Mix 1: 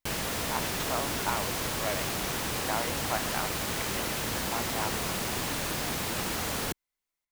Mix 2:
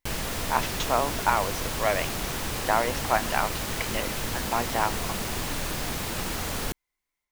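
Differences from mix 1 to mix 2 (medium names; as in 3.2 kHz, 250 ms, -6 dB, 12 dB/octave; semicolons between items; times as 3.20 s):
speech +9.0 dB; background: remove high-pass 100 Hz 6 dB/octave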